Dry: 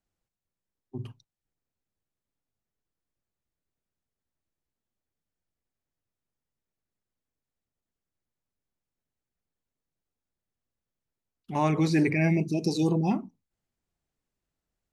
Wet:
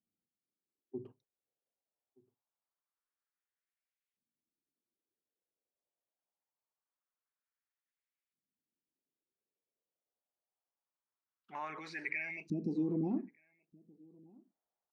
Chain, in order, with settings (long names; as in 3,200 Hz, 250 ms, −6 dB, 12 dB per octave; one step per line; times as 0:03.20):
low-shelf EQ 150 Hz −6 dB
brickwall limiter −23 dBFS, peak gain reduction 9.5 dB
auto-filter band-pass saw up 0.24 Hz 210–2,500 Hz
slap from a distant wall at 210 metres, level −26 dB
level +2 dB